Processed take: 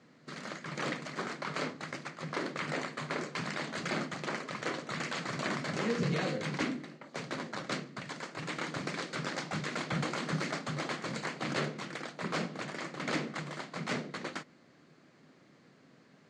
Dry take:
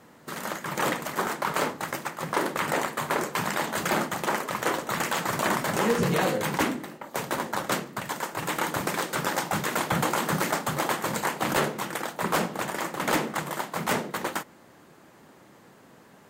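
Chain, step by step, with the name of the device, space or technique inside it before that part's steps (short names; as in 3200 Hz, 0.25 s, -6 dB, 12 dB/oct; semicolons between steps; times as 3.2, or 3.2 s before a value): car door speaker (speaker cabinet 91–6800 Hz, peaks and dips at 150 Hz +7 dB, 260 Hz +5 dB, 890 Hz -8 dB, 2200 Hz +4 dB, 4400 Hz +6 dB); gain -9 dB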